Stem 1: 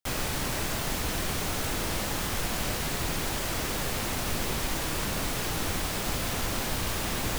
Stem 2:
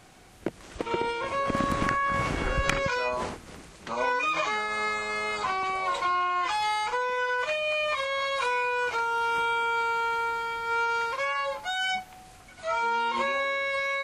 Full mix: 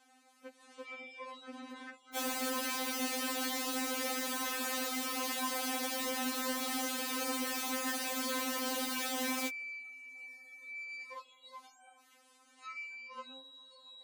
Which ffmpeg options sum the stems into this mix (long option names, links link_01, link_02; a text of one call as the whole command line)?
ffmpeg -i stem1.wav -i stem2.wav -filter_complex "[0:a]adelay=2100,volume=-2dB[link_01];[1:a]acrossover=split=3500[link_02][link_03];[link_03]acompressor=threshold=-47dB:ratio=4:attack=1:release=60[link_04];[link_02][link_04]amix=inputs=2:normalize=0,lowshelf=frequency=390:gain=-6.5,acompressor=threshold=-29dB:ratio=6,volume=-8.5dB[link_05];[link_01][link_05]amix=inputs=2:normalize=0,highpass=100,afftfilt=real='re*3.46*eq(mod(b,12),0)':imag='im*3.46*eq(mod(b,12),0)':win_size=2048:overlap=0.75" out.wav